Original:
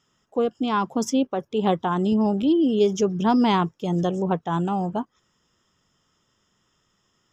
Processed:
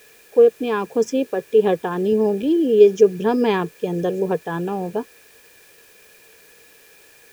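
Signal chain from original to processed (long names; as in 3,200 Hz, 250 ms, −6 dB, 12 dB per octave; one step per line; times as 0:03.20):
bit-depth reduction 8 bits, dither triangular
hollow resonant body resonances 450/1,700/2,400 Hz, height 17 dB, ringing for 35 ms
level −4 dB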